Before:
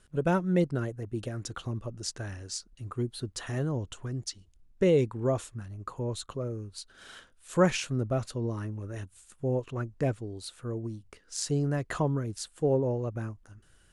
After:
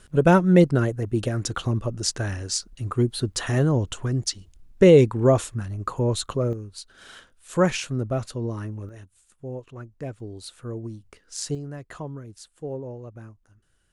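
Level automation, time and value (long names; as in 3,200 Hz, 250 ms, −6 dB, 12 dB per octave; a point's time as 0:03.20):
+10 dB
from 0:06.53 +3 dB
from 0:08.89 −5.5 dB
from 0:10.20 +1.5 dB
from 0:11.55 −7 dB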